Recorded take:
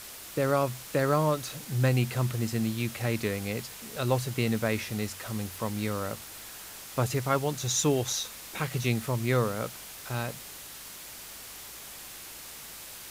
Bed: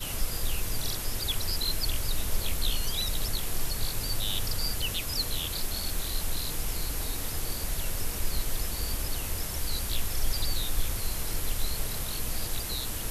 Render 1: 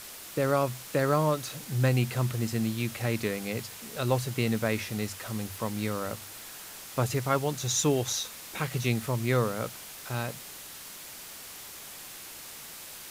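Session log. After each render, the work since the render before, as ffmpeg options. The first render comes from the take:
-af "bandreject=f=50:t=h:w=4,bandreject=f=100:t=h:w=4"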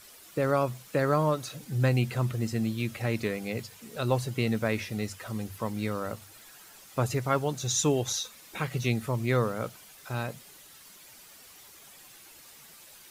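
-af "afftdn=nr=10:nf=-44"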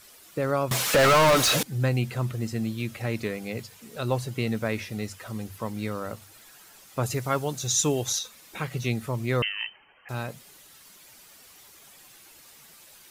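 -filter_complex "[0:a]asettb=1/sr,asplit=3[s0][s1][s2];[s0]atrim=end=0.714[s3];[s1]atrim=start=0.71:end=1.63,asetpts=PTS-STARTPTS,afade=t=in:d=0.004:c=qsin,afade=t=out:st=0.916:d=0.004:c=qsin,asplit=2[s4][s5];[s5]highpass=f=720:p=1,volume=63.1,asoftclip=type=tanh:threshold=0.251[s6];[s4][s6]amix=inputs=2:normalize=0,lowpass=f=6700:p=1,volume=0.501[s7];[s2]atrim=start=1.626[s8];[s3][s7]acrossfade=d=0.004:c1=hsin:c2=qsin[s9];[s9][s8]acrossfade=d=0.004:c1=qsin:c2=hsin,asettb=1/sr,asplit=3[s10][s11][s12];[s10]atrim=end=7.034[s13];[s11]atrim=start=7.03:end=8.19,asetpts=PTS-STARTPTS,afade=t=in:d=0.004:c=qsin,afade=t=out:st=1.156:d=0.004:c=qsin,highshelf=f=4400:g=6[s14];[s12]atrim=start=8.186[s15];[s13][s14]acrossfade=d=0.004:c1=hsin:c2=qsin[s16];[s16][s15]acrossfade=d=0.004:c1=qsin:c2=hsin,asettb=1/sr,asplit=3[s17][s18][s19];[s17]atrim=end=9.424[s20];[s18]atrim=start=9.42:end=10.09,asetpts=PTS-STARTPTS,afade=t=in:d=0.004:c=qsin,afade=t=out:st=0.666:d=0.004:c=qsin,lowpass=f=2700:t=q:w=0.5098,lowpass=f=2700:t=q:w=0.6013,lowpass=f=2700:t=q:w=0.9,lowpass=f=2700:t=q:w=2.563,afreqshift=-3200[s21];[s19]atrim=start=10.086[s22];[s20][s21]acrossfade=d=0.004:c1=hsin:c2=qsin[s23];[s23][s22]acrossfade=d=0.004:c1=qsin:c2=hsin"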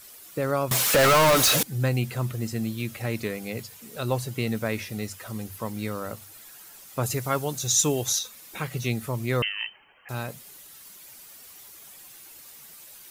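-af "highshelf=f=9600:g=10"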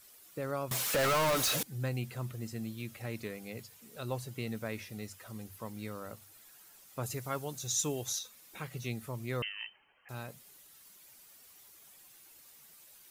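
-af "volume=0.299"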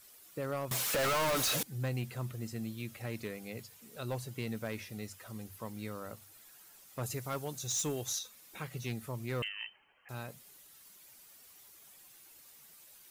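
-af "volume=29.9,asoftclip=hard,volume=0.0335"

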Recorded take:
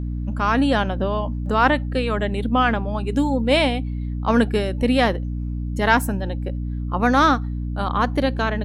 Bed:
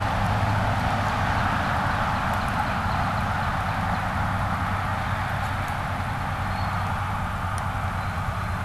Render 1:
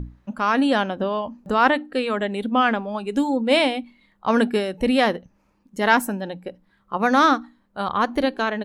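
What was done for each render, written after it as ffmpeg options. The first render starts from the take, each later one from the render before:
-af "bandreject=f=60:t=h:w=6,bandreject=f=120:t=h:w=6,bandreject=f=180:t=h:w=6,bandreject=f=240:t=h:w=6,bandreject=f=300:t=h:w=6"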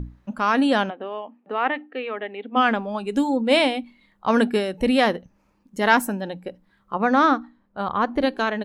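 -filter_complex "[0:a]asplit=3[s0][s1][s2];[s0]afade=t=out:st=0.89:d=0.02[s3];[s1]highpass=f=320:w=0.5412,highpass=f=320:w=1.3066,equalizer=f=350:t=q:w=4:g=-7,equalizer=f=570:t=q:w=4:g=-9,equalizer=f=1000:t=q:w=4:g=-8,equalizer=f=1500:t=q:w=4:g=-8,lowpass=f=2600:w=0.5412,lowpass=f=2600:w=1.3066,afade=t=in:st=0.89:d=0.02,afade=t=out:st=2.55:d=0.02[s4];[s2]afade=t=in:st=2.55:d=0.02[s5];[s3][s4][s5]amix=inputs=3:normalize=0,asettb=1/sr,asplit=3[s6][s7][s8];[s6]atrim=end=6.944[s9];[s7]atrim=start=6.94:end=8.23,asetpts=PTS-STARTPTS,afade=t=in:d=0.004:c=qsin,afade=t=out:st=1.286:d=0.004:c=qsin,lowpass=f=1900:p=1[s10];[s8]atrim=start=8.226[s11];[s9][s10]acrossfade=d=0.004:c1=hsin:c2=qsin[s12];[s12][s11]acrossfade=d=0.004:c1=qsin:c2=hsin"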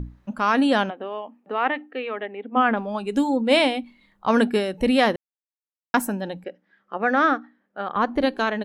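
-filter_complex "[0:a]asplit=3[s0][s1][s2];[s0]afade=t=out:st=2.25:d=0.02[s3];[s1]lowpass=2100,afade=t=in:st=2.25:d=0.02,afade=t=out:st=2.76:d=0.02[s4];[s2]afade=t=in:st=2.76:d=0.02[s5];[s3][s4][s5]amix=inputs=3:normalize=0,asettb=1/sr,asplit=3[s6][s7][s8];[s6]atrim=end=6.444[s9];[s7]atrim=start=6.44:end=7.96,asetpts=PTS-STARTPTS,afade=t=in:d=0.004:c=qsin,afade=t=out:st=1.516:d=0.004:c=qsin,highpass=300,equalizer=f=1000:t=q:w=4:g=-10,equalizer=f=1700:t=q:w=4:g=6,equalizer=f=4100:t=q:w=4:g=-9,lowpass=f=5500:w=0.5412,lowpass=f=5500:w=1.3066[s10];[s8]atrim=start=7.956[s11];[s9][s10]acrossfade=d=0.004:c1=hsin:c2=qsin[s12];[s12][s11]acrossfade=d=0.004:c1=qsin:c2=hsin,asplit=3[s13][s14][s15];[s13]atrim=end=5.16,asetpts=PTS-STARTPTS,afade=t=out:st=5.156:d=0.004:c=hsin[s16];[s14]atrim=start=5.16:end=5.94,asetpts=PTS-STARTPTS,volume=0[s17];[s15]atrim=start=5.94,asetpts=PTS-STARTPTS,afade=t=in:d=0.004:c=hsin[s18];[s16][s17][s18]concat=n=3:v=0:a=1"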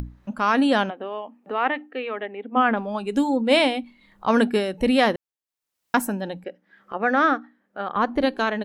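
-af "acompressor=mode=upward:threshold=0.02:ratio=2.5"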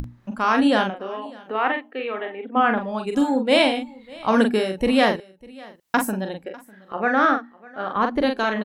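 -filter_complex "[0:a]asplit=2[s0][s1];[s1]adelay=42,volume=0.531[s2];[s0][s2]amix=inputs=2:normalize=0,aecho=1:1:599:0.0708"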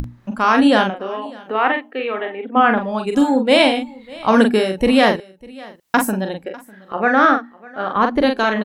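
-af "volume=1.78,alimiter=limit=0.794:level=0:latency=1"

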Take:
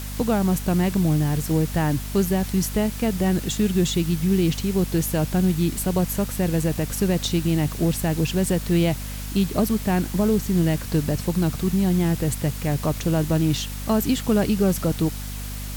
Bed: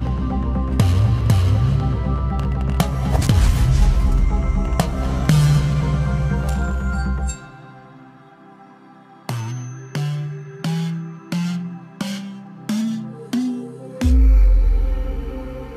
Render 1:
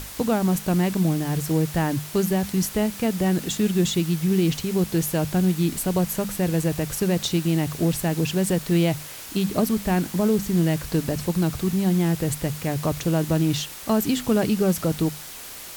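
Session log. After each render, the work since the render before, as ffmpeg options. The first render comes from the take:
-af "bandreject=f=50:t=h:w=6,bandreject=f=100:t=h:w=6,bandreject=f=150:t=h:w=6,bandreject=f=200:t=h:w=6,bandreject=f=250:t=h:w=6"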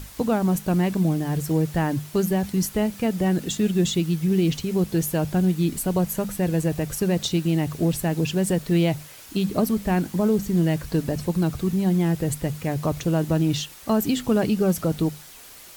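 -af "afftdn=nr=7:nf=-38"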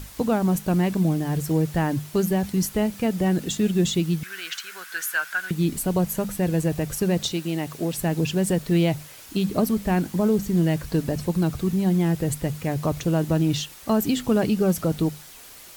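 -filter_complex "[0:a]asettb=1/sr,asplit=3[s0][s1][s2];[s0]atrim=end=4.234[s3];[s1]atrim=start=4.23:end=5.51,asetpts=PTS-STARTPTS,afade=t=in:d=0.004:c=qsin,afade=t=out:st=1.276:d=0.004:c=qsin,highpass=f=1500:t=q:w=9.6[s4];[s2]atrim=start=5.506[s5];[s3][s4]acrossfade=d=0.004:c1=hsin:c2=qsin[s6];[s6][s5]acrossfade=d=0.004:c1=qsin:c2=hsin,asettb=1/sr,asplit=3[s7][s8][s9];[s7]atrim=end=7.324[s10];[s8]atrim=start=7.32:end=7.98,asetpts=PTS-STARTPTS,afade=t=in:d=0.004:c=qsin,afade=t=out:st=0.656:d=0.004:c=qsin,highpass=f=340:p=1[s11];[s9]atrim=start=7.976[s12];[s10][s11]acrossfade=d=0.004:c1=hsin:c2=qsin[s13];[s13][s12]acrossfade=d=0.004:c1=qsin:c2=hsin"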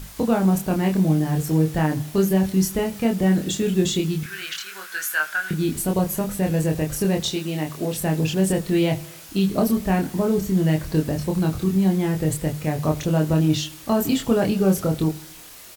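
-filter_complex "[0:a]asplit=2[s0][s1];[s1]adelay=26,volume=0.708[s2];[s0][s2]amix=inputs=2:normalize=0,aecho=1:1:79|158|237|316|395:0.0891|0.0526|0.031|0.0183|0.0108"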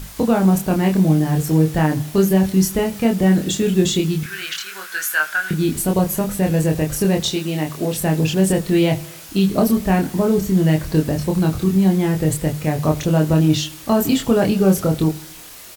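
-af "volume=1.58,alimiter=limit=0.708:level=0:latency=1"

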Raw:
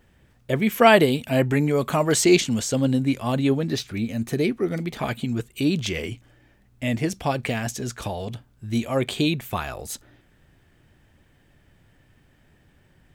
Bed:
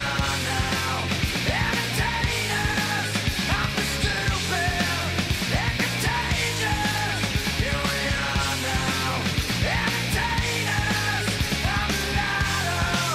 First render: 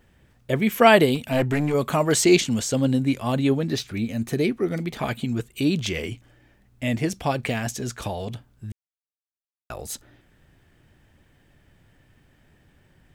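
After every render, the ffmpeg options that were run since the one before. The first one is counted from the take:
-filter_complex "[0:a]asplit=3[s0][s1][s2];[s0]afade=t=out:st=1.14:d=0.02[s3];[s1]aeval=exprs='clip(val(0),-1,0.1)':c=same,afade=t=in:st=1.14:d=0.02,afade=t=out:st=1.73:d=0.02[s4];[s2]afade=t=in:st=1.73:d=0.02[s5];[s3][s4][s5]amix=inputs=3:normalize=0,asplit=3[s6][s7][s8];[s6]atrim=end=8.72,asetpts=PTS-STARTPTS,afade=t=out:st=8.716:d=0.004:c=hsin[s9];[s7]atrim=start=8.72:end=9.7,asetpts=PTS-STARTPTS,volume=0[s10];[s8]atrim=start=9.7,asetpts=PTS-STARTPTS,afade=t=in:d=0.004:c=hsin[s11];[s9][s10][s11]concat=n=3:v=0:a=1"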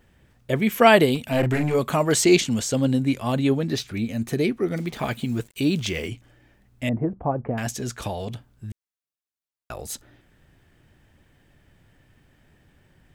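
-filter_complex "[0:a]asettb=1/sr,asplit=3[s0][s1][s2];[s0]atrim=end=1.394[s3];[s1]atrim=start=1.39:end=1.79,asetpts=PTS-STARTPTS,afade=t=in:d=0.004:c=qsin,afade=t=out:st=0.396:d=0.004:c=qsin,asplit=2[s4][s5];[s5]adelay=39,volume=0.473[s6];[s4][s6]amix=inputs=2:normalize=0,atrim=end_sample=17640[s7];[s2]atrim=start=1.786[s8];[s3][s7]acrossfade=d=0.004:c1=hsin:c2=qsin[s9];[s9][s8]acrossfade=d=0.004:c1=qsin:c2=hsin,asettb=1/sr,asplit=3[s10][s11][s12];[s10]atrim=end=4.764[s13];[s11]atrim=start=4.76:end=6.08,asetpts=PTS-STARTPTS,afade=t=in:d=0.004:c=qsin,afade=t=out:st=1.316:d=0.004:c=qsin,acrusher=bits=7:mix=0:aa=0.5[s14];[s12]atrim=start=6.076[s15];[s13][s14]acrossfade=d=0.004:c1=hsin:c2=qsin[s16];[s16][s15]acrossfade=d=0.004:c1=qsin:c2=hsin,asettb=1/sr,asplit=3[s17][s18][s19];[s17]atrim=end=6.894[s20];[s18]atrim=start=6.89:end=7.58,asetpts=PTS-STARTPTS,afade=t=in:d=0.004:c=qsin,afade=t=out:st=0.686:d=0.004:c=qsin,lowpass=f=1100:w=0.5412,lowpass=f=1100:w=1.3066[s21];[s19]atrim=start=7.576[s22];[s20][s21]acrossfade=d=0.004:c1=hsin:c2=qsin[s23];[s23][s22]acrossfade=d=0.004:c1=qsin:c2=hsin"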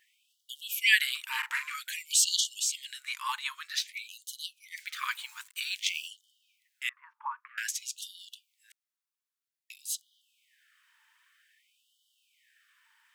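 -af "afftfilt=real='re*gte(b*sr/1024,850*pow(2900/850,0.5+0.5*sin(2*PI*0.52*pts/sr)))':imag='im*gte(b*sr/1024,850*pow(2900/850,0.5+0.5*sin(2*PI*0.52*pts/sr)))':win_size=1024:overlap=0.75"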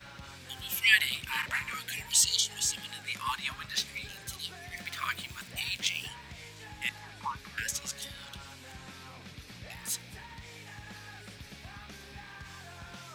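-filter_complex "[1:a]volume=0.0708[s0];[0:a][s0]amix=inputs=2:normalize=0"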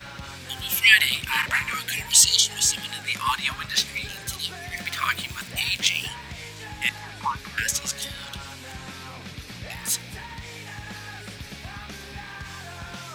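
-af "volume=2.82,alimiter=limit=0.794:level=0:latency=1"

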